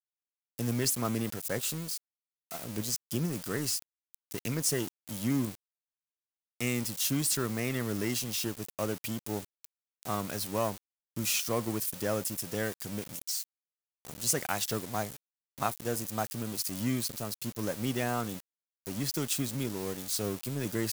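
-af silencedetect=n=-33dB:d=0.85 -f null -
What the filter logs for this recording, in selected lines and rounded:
silence_start: 5.55
silence_end: 6.60 | silence_duration: 1.05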